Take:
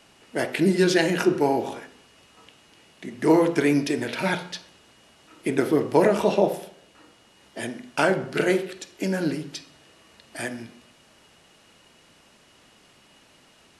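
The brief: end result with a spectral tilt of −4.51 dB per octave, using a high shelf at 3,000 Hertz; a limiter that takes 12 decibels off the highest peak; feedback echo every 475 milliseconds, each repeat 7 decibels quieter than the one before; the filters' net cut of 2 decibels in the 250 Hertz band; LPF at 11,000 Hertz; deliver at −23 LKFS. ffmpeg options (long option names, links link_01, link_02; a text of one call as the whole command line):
ffmpeg -i in.wav -af "lowpass=11000,equalizer=frequency=250:width_type=o:gain=-3,highshelf=frequency=3000:gain=3.5,alimiter=limit=-17.5dB:level=0:latency=1,aecho=1:1:475|950|1425|1900|2375:0.447|0.201|0.0905|0.0407|0.0183,volume=6.5dB" out.wav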